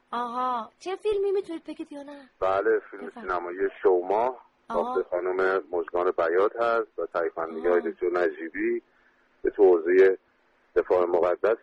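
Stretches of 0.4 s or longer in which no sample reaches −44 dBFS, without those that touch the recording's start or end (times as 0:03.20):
0:08.79–0:09.44
0:10.16–0:10.76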